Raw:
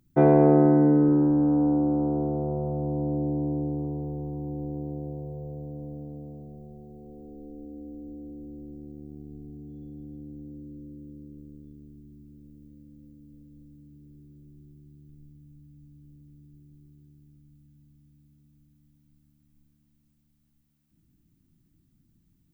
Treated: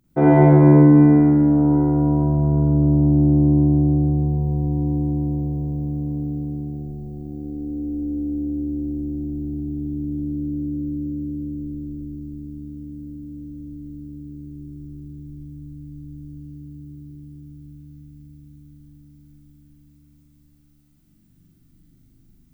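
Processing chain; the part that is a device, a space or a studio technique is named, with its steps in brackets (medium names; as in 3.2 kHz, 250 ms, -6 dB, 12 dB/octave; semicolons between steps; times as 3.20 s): tunnel (flutter echo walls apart 7.1 m, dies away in 0.86 s; reverberation RT60 2.8 s, pre-delay 41 ms, DRR -6 dB)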